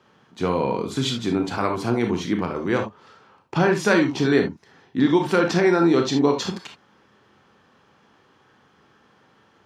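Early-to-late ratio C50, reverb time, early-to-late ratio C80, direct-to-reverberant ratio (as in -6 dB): 8.0 dB, not exponential, 19.5 dB, 3.5 dB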